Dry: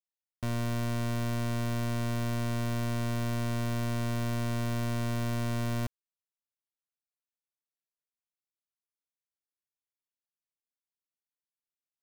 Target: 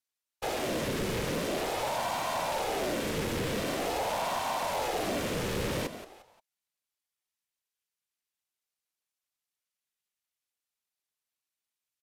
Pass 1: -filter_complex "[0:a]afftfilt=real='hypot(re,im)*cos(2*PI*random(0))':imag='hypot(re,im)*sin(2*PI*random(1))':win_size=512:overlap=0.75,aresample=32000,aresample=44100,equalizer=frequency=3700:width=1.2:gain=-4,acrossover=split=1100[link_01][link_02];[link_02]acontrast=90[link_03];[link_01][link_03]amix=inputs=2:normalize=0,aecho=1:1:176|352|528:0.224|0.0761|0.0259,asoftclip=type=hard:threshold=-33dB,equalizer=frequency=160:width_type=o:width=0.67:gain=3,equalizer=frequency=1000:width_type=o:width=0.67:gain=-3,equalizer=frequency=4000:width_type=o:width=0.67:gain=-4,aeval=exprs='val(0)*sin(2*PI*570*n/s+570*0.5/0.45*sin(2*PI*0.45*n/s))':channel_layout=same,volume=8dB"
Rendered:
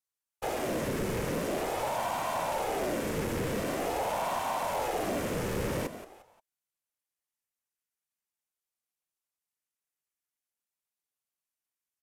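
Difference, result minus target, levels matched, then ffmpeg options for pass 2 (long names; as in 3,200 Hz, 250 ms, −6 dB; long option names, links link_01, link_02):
4,000 Hz band −5.0 dB
-filter_complex "[0:a]afftfilt=real='hypot(re,im)*cos(2*PI*random(0))':imag='hypot(re,im)*sin(2*PI*random(1))':win_size=512:overlap=0.75,aresample=32000,aresample=44100,equalizer=frequency=3700:width=1.2:gain=4.5,acrossover=split=1100[link_01][link_02];[link_02]acontrast=90[link_03];[link_01][link_03]amix=inputs=2:normalize=0,aecho=1:1:176|352|528:0.224|0.0761|0.0259,asoftclip=type=hard:threshold=-33dB,equalizer=frequency=160:width_type=o:width=0.67:gain=3,equalizer=frequency=1000:width_type=o:width=0.67:gain=-3,equalizer=frequency=4000:width_type=o:width=0.67:gain=-4,aeval=exprs='val(0)*sin(2*PI*570*n/s+570*0.5/0.45*sin(2*PI*0.45*n/s))':channel_layout=same,volume=8dB"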